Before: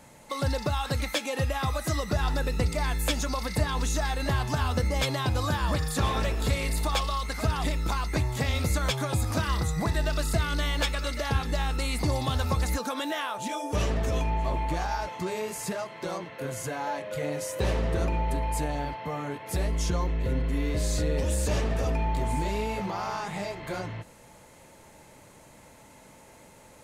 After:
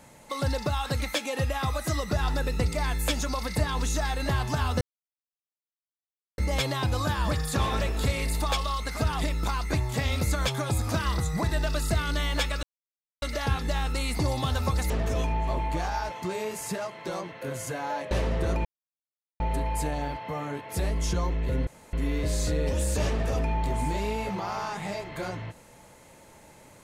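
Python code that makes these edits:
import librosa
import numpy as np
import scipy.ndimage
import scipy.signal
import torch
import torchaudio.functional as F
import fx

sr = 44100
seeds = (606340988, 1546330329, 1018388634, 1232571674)

y = fx.edit(x, sr, fx.insert_silence(at_s=4.81, length_s=1.57),
    fx.insert_silence(at_s=11.06, length_s=0.59),
    fx.cut(start_s=12.74, length_s=1.13),
    fx.cut(start_s=17.08, length_s=0.55),
    fx.insert_silence(at_s=18.17, length_s=0.75),
    fx.insert_room_tone(at_s=20.44, length_s=0.26), tone=tone)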